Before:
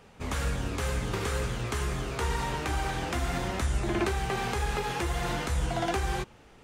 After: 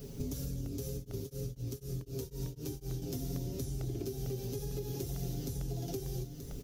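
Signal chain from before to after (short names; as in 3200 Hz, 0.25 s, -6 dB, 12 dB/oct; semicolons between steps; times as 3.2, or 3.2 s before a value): EQ curve 400 Hz 0 dB, 1000 Hz -26 dB, 2000 Hz -24 dB, 5900 Hz +3 dB, 8500 Hz -7 dB, 13000 Hz +13 dB; requantised 12-bit, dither triangular; comb 7.3 ms, depth 73%; compressor 16:1, threshold -45 dBFS, peak gain reduction 20.5 dB; low shelf 380 Hz +3.5 dB; echo 0.93 s -8 dB; crackling interface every 0.45 s, samples 64, repeat, from 0.66; 0.93–3.02 beating tremolo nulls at 4 Hz; gain +7.5 dB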